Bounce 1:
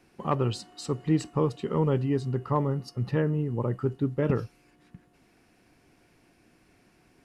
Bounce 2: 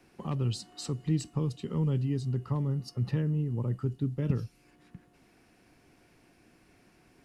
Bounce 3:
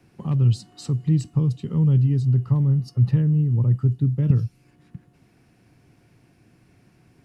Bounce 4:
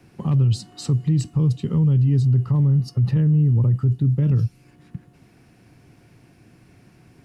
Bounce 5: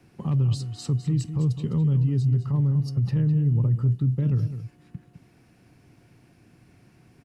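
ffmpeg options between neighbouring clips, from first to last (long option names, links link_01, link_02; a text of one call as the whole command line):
ffmpeg -i in.wav -filter_complex "[0:a]acrossover=split=250|3000[link_01][link_02][link_03];[link_02]acompressor=threshold=-45dB:ratio=3[link_04];[link_01][link_04][link_03]amix=inputs=3:normalize=0" out.wav
ffmpeg -i in.wav -af "equalizer=frequency=120:width=0.96:gain=13" out.wav
ffmpeg -i in.wav -af "alimiter=limit=-17.5dB:level=0:latency=1:release=21,volume=5dB" out.wav
ffmpeg -i in.wav -af "aecho=1:1:207:0.282,volume=-4.5dB" out.wav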